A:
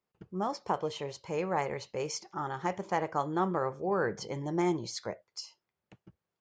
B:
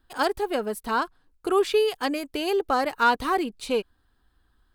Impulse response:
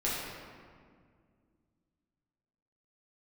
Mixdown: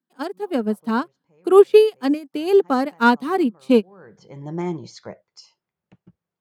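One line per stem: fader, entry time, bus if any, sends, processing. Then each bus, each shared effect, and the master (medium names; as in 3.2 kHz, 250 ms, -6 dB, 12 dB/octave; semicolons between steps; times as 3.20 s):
-10.5 dB, 0.00 s, no send, treble shelf 4.3 kHz -8 dB; auto duck -23 dB, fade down 0.40 s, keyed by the second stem
-1.5 dB, 0.00 s, no send, steep high-pass 170 Hz; peaking EQ 220 Hz +13 dB 1.7 oct; upward expansion 2.5:1, over -26 dBFS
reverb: none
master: peaking EQ 170 Hz +6.5 dB 0.65 oct; level rider gain up to 11.5 dB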